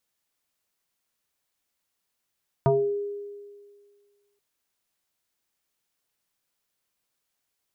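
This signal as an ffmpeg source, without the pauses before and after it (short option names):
-f lavfi -i "aevalsrc='0.158*pow(10,-3*t/1.83)*sin(2*PI*407*t+2.1*pow(10,-3*t/0.41)*sin(2*PI*0.66*407*t))':d=1.73:s=44100"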